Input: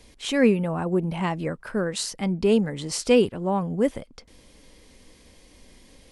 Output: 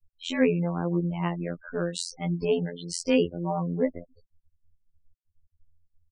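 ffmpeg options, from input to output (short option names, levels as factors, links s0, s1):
-af "afftfilt=real='re*gte(hypot(re,im),0.0316)':imag='im*gte(hypot(re,im),0.0316)':win_size=1024:overlap=0.75,afftfilt=real='hypot(re,im)*cos(PI*b)':imag='0':win_size=2048:overlap=0.75"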